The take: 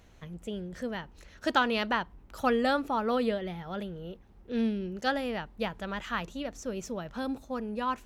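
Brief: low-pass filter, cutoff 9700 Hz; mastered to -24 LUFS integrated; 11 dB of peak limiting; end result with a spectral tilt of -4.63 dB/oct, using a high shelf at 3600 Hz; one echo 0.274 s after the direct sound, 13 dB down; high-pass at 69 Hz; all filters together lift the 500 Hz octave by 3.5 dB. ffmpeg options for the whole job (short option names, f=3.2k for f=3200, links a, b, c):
-af "highpass=69,lowpass=9.7k,equalizer=f=500:t=o:g=4,highshelf=f=3.6k:g=-8,alimiter=limit=-22dB:level=0:latency=1,aecho=1:1:274:0.224,volume=9.5dB"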